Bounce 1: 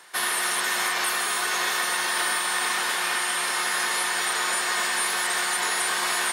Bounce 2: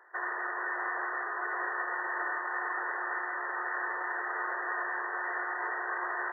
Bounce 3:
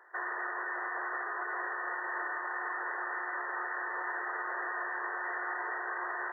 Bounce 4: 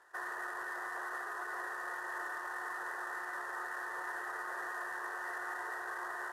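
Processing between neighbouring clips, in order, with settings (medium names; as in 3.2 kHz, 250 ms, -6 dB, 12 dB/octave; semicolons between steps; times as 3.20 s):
FFT band-pass 310–2000 Hz; trim -6 dB
peak limiter -27.5 dBFS, peak gain reduction 5.5 dB
CVSD coder 64 kbps; trim -4.5 dB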